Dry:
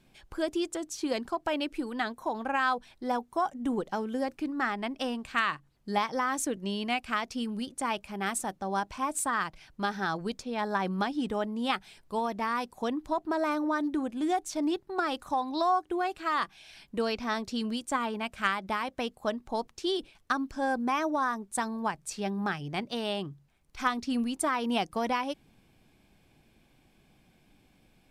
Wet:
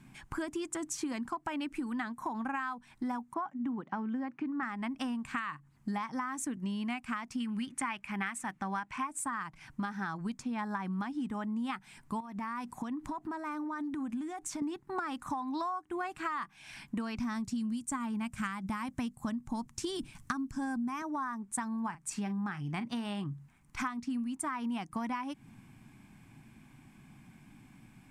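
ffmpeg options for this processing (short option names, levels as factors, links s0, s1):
-filter_complex "[0:a]asettb=1/sr,asplit=3[s0][s1][s2];[s0]atrim=end=3.344[s3];[s1]atrim=start=3.34:end=4.63,asetpts=PTS-STARTPTS,afade=t=in:d=0.004:c=qsin,afade=t=out:st=1.286:d=0.004:c=qsin,highpass=160,lowpass=2700[s4];[s2]atrim=start=4.626[s5];[s3][s4]acrossfade=d=0.004:c1=hsin:c2=qsin[s6];[s6][s5]acrossfade=d=0.004:c1=qsin:c2=hsin,asettb=1/sr,asplit=3[s7][s8][s9];[s7]atrim=end=7.404[s10];[s8]atrim=start=7.4:end=9.07,asetpts=PTS-STARTPTS,afade=t=in:d=0.004:c=qsin,afade=t=out:st=1.666:d=0.004:c=qsin,equalizer=f=2200:w=0.8:g=11.5[s11];[s9]atrim=start=9.066[s12];[s10][s11]acrossfade=d=0.004:c1=hsin:c2=qsin[s13];[s13][s12]acrossfade=d=0.004:c1=qsin:c2=hsin,asettb=1/sr,asplit=3[s14][s15][s16];[s14]atrim=end=12.204[s17];[s15]atrim=start=12.2:end=14.62,asetpts=PTS-STARTPTS,afade=t=in:d=0.004:c=qsin,afade=t=out:st=2.416:d=0.004:c=qsin,acompressor=threshold=0.0112:ratio=8:attack=3.2:release=140:knee=1:detection=peak[s18];[s16]atrim=start=14.616[s19];[s17][s18]acrossfade=d=0.004:c1=hsin:c2=qsin[s20];[s20][s19]acrossfade=d=0.004:c1=qsin:c2=hsin,asettb=1/sr,asplit=3[s21][s22][s23];[s21]atrim=end=17.174[s24];[s22]atrim=start=17.17:end=21.02,asetpts=PTS-STARTPTS,afade=t=in:d=0.004:c=qsin,afade=t=out:st=3.846:d=0.004:c=qsin,bass=f=250:g=11,treble=f=4000:g=9[s25];[s23]atrim=start=21.016[s26];[s24][s25]acrossfade=d=0.004:c1=hsin:c2=qsin[s27];[s27][s26]acrossfade=d=0.004:c1=qsin:c2=hsin,asettb=1/sr,asplit=3[s28][s29][s30];[s28]atrim=end=21.814[s31];[s29]atrim=start=21.81:end=23.24,asetpts=PTS-STARTPTS,afade=t=in:d=0.004:c=qsin,afade=t=out:st=1.426:d=0.004:c=qsin,asplit=2[s32][s33];[s33]adelay=39,volume=0.224[s34];[s32][s34]amix=inputs=2:normalize=0,atrim=end_sample=63063[s35];[s30]atrim=start=23.236[s36];[s31][s35]acrossfade=d=0.004:c1=hsin:c2=qsin[s37];[s37][s36]acrossfade=d=0.004:c1=qsin:c2=hsin,equalizer=f=125:t=o:w=1:g=11,equalizer=f=250:t=o:w=1:g=11,equalizer=f=500:t=o:w=1:g=-11,equalizer=f=1000:t=o:w=1:g=10,equalizer=f=2000:t=o:w=1:g=7,equalizer=f=4000:t=o:w=1:g=-5,equalizer=f=8000:t=o:w=1:g=8,acompressor=threshold=0.0251:ratio=10,volume=0.891"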